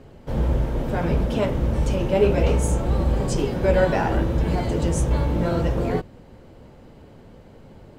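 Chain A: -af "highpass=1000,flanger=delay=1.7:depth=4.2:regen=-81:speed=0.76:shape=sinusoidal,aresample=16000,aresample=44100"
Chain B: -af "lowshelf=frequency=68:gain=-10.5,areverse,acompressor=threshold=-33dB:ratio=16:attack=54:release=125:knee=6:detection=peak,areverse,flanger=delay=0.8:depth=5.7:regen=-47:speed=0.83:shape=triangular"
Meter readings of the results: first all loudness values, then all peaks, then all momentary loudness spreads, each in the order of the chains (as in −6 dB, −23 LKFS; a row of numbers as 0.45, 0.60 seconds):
−38.5, −38.0 LKFS; −19.5, −24.0 dBFS; 12, 16 LU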